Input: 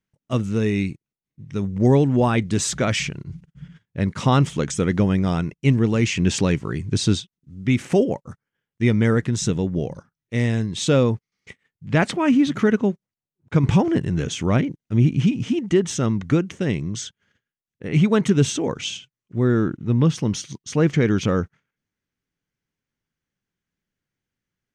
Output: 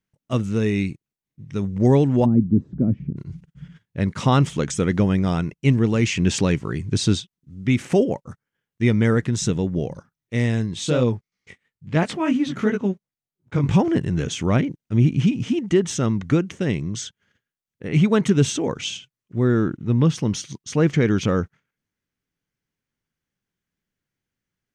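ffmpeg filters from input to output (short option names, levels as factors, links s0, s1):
-filter_complex "[0:a]asplit=3[s0][s1][s2];[s0]afade=t=out:st=2.24:d=0.02[s3];[s1]lowpass=f=250:t=q:w=2.2,afade=t=in:st=2.24:d=0.02,afade=t=out:st=3.16:d=0.02[s4];[s2]afade=t=in:st=3.16:d=0.02[s5];[s3][s4][s5]amix=inputs=3:normalize=0,asplit=3[s6][s7][s8];[s6]afade=t=out:st=10.74:d=0.02[s9];[s7]flanger=delay=16:depth=6:speed=2.9,afade=t=in:st=10.74:d=0.02,afade=t=out:st=13.73:d=0.02[s10];[s8]afade=t=in:st=13.73:d=0.02[s11];[s9][s10][s11]amix=inputs=3:normalize=0"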